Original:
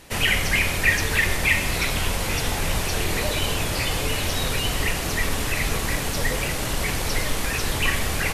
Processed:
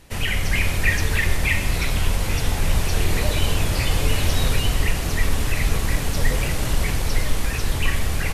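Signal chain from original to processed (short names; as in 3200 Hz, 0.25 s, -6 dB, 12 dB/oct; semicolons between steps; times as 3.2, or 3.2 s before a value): low shelf 150 Hz +10 dB; AGC; gain -5.5 dB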